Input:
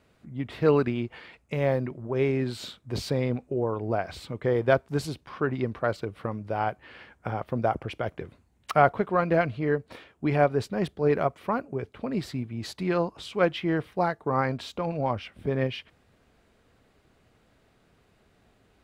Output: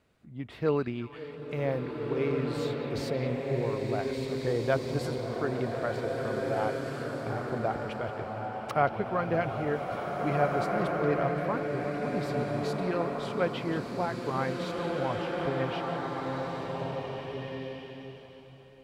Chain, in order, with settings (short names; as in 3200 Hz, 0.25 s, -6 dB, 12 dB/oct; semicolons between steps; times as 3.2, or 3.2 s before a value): on a send: delay with a stepping band-pass 0.178 s, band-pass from 3300 Hz, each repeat -1.4 oct, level -10 dB; on the sum: bloom reverb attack 1.93 s, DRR -0.5 dB; gain -6 dB